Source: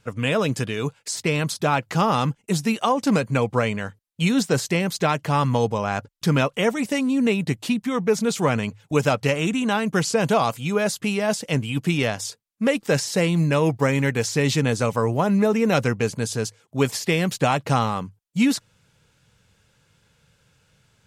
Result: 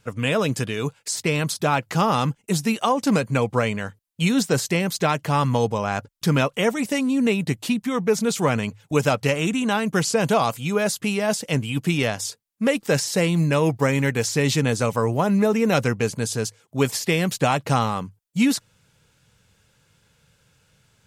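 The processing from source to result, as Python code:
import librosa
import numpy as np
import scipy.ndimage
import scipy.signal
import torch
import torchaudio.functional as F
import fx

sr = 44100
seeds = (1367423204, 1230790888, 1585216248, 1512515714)

y = fx.high_shelf(x, sr, hz=9000.0, db=5.5)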